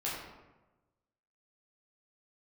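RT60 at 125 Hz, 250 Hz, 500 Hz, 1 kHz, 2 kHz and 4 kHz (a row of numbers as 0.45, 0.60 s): 1.4, 1.2, 1.2, 1.1, 0.90, 0.65 s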